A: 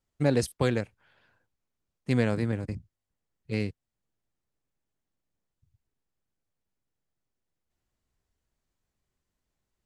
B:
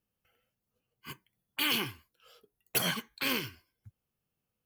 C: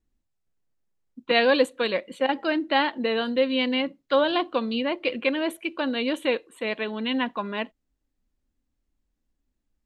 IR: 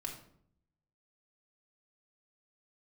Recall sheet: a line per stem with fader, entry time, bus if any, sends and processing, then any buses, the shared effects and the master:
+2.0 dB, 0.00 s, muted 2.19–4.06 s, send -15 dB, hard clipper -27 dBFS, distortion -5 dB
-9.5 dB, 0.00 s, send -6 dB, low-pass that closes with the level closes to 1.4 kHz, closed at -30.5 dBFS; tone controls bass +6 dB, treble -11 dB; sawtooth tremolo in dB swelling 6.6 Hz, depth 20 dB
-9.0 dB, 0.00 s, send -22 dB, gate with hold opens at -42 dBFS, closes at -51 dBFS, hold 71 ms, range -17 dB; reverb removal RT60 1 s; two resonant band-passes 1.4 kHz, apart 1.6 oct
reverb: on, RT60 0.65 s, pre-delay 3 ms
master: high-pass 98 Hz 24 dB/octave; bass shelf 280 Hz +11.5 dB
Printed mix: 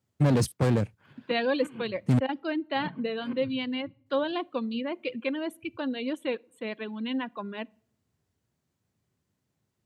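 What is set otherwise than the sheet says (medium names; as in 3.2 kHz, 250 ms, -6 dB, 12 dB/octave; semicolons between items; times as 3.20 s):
stem A: send off; stem C: missing two resonant band-passes 1.4 kHz, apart 1.6 oct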